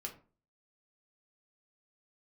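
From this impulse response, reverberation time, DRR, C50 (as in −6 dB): 0.40 s, 0.5 dB, 11.5 dB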